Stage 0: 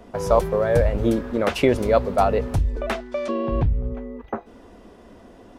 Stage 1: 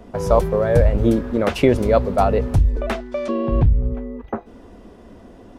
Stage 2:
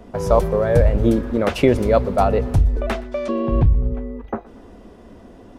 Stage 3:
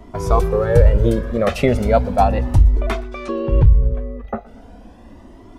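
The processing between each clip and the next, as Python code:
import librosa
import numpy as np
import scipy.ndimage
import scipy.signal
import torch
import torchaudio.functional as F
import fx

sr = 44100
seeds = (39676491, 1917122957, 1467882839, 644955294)

y1 = fx.low_shelf(x, sr, hz=360.0, db=6.0)
y2 = fx.echo_feedback(y1, sr, ms=120, feedback_pct=53, wet_db=-22.0)
y3 = fx.comb_cascade(y2, sr, direction='rising', hz=0.37)
y3 = y3 * 10.0 ** (5.5 / 20.0)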